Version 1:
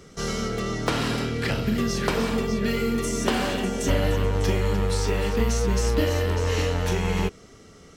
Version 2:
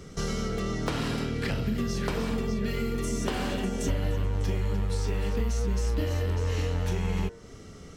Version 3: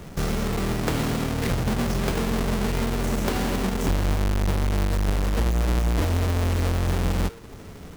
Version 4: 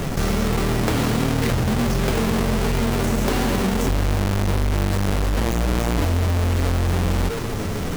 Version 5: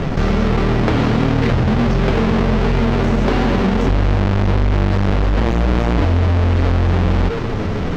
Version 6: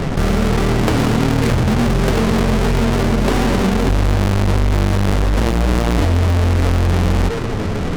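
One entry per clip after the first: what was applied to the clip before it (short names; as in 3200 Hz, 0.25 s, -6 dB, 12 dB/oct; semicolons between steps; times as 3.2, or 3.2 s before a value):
low shelf 210 Hz +7.5 dB; de-hum 115.2 Hz, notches 17; compressor 2.5:1, threshold -29 dBFS, peak gain reduction 12 dB
half-waves squared off
flange 1.5 Hz, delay 6.9 ms, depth 3.5 ms, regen -43%; fast leveller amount 70%; gain +5 dB
air absorption 200 m; gain +5.5 dB
tracing distortion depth 0.38 ms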